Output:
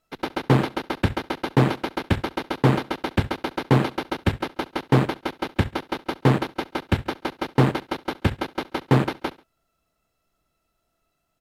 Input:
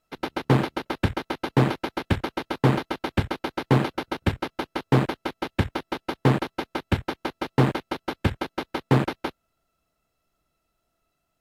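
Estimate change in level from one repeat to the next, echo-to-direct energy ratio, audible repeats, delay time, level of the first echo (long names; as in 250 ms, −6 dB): −6.5 dB, −20.0 dB, 2, 69 ms, −21.0 dB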